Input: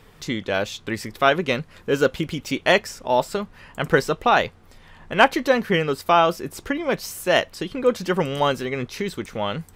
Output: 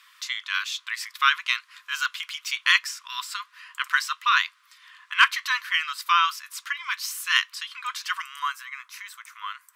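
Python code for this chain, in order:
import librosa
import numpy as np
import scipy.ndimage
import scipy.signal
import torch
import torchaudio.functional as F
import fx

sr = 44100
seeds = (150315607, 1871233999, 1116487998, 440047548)

y = fx.brickwall_highpass(x, sr, low_hz=970.0)
y = fx.peak_eq(y, sr, hz=3800.0, db=fx.steps((0.0, 3.5), (8.22, -9.0)), octaves=1.6)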